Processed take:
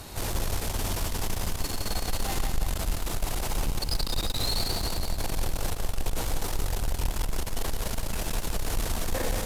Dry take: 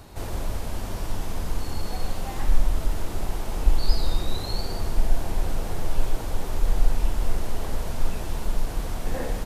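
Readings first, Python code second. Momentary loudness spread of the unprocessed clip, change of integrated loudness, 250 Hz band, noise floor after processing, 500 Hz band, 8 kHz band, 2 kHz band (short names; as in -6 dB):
6 LU, -0.5 dB, -1.5 dB, -34 dBFS, -1.0 dB, +7.0 dB, +2.5 dB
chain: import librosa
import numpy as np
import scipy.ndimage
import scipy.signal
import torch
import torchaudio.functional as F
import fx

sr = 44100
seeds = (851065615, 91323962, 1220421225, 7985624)

y = fx.high_shelf(x, sr, hz=2200.0, db=9.0)
y = fx.tube_stage(y, sr, drive_db=27.0, bias=0.35)
y = fx.echo_feedback(y, sr, ms=177, feedback_pct=60, wet_db=-7.0)
y = y * librosa.db_to_amplitude(3.5)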